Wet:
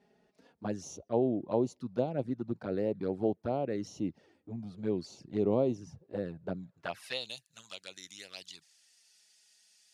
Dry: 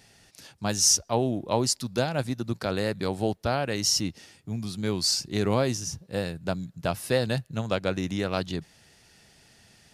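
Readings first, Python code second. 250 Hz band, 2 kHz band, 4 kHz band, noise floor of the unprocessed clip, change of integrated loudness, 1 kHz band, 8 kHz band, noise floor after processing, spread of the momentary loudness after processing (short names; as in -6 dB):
-4.5 dB, -13.0 dB, -16.5 dB, -58 dBFS, -7.5 dB, -9.5 dB, -25.0 dB, -73 dBFS, 16 LU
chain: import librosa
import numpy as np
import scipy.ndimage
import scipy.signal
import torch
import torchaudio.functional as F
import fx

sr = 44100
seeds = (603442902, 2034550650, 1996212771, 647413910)

y = fx.env_flanger(x, sr, rest_ms=5.1, full_db=-22.0)
y = fx.filter_sweep_bandpass(y, sr, from_hz=390.0, to_hz=7100.0, start_s=6.53, end_s=7.38, q=0.95)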